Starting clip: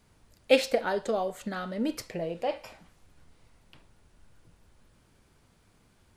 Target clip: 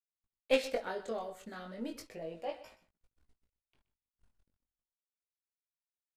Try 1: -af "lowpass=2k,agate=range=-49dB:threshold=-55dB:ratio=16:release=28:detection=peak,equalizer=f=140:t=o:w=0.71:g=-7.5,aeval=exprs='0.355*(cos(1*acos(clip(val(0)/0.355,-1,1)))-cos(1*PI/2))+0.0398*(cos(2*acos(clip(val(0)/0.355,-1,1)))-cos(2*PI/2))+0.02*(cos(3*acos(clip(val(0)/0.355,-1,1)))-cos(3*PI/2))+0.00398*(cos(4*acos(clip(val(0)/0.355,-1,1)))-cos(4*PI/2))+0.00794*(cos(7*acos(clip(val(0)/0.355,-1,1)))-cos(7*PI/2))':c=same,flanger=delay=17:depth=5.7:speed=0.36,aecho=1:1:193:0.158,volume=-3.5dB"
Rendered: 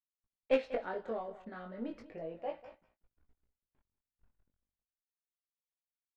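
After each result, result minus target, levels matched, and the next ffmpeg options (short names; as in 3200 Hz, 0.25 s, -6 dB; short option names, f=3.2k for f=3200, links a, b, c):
echo 67 ms late; 2000 Hz band -3.0 dB
-af "lowpass=2k,agate=range=-49dB:threshold=-55dB:ratio=16:release=28:detection=peak,equalizer=f=140:t=o:w=0.71:g=-7.5,aeval=exprs='0.355*(cos(1*acos(clip(val(0)/0.355,-1,1)))-cos(1*PI/2))+0.0398*(cos(2*acos(clip(val(0)/0.355,-1,1)))-cos(2*PI/2))+0.02*(cos(3*acos(clip(val(0)/0.355,-1,1)))-cos(3*PI/2))+0.00398*(cos(4*acos(clip(val(0)/0.355,-1,1)))-cos(4*PI/2))+0.00794*(cos(7*acos(clip(val(0)/0.355,-1,1)))-cos(7*PI/2))':c=same,flanger=delay=17:depth=5.7:speed=0.36,aecho=1:1:126:0.158,volume=-3.5dB"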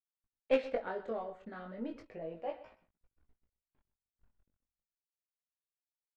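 2000 Hz band -3.0 dB
-af "agate=range=-49dB:threshold=-55dB:ratio=16:release=28:detection=peak,equalizer=f=140:t=o:w=0.71:g=-7.5,aeval=exprs='0.355*(cos(1*acos(clip(val(0)/0.355,-1,1)))-cos(1*PI/2))+0.0398*(cos(2*acos(clip(val(0)/0.355,-1,1)))-cos(2*PI/2))+0.02*(cos(3*acos(clip(val(0)/0.355,-1,1)))-cos(3*PI/2))+0.00398*(cos(4*acos(clip(val(0)/0.355,-1,1)))-cos(4*PI/2))+0.00794*(cos(7*acos(clip(val(0)/0.355,-1,1)))-cos(7*PI/2))':c=same,flanger=delay=17:depth=5.7:speed=0.36,aecho=1:1:126:0.158,volume=-3.5dB"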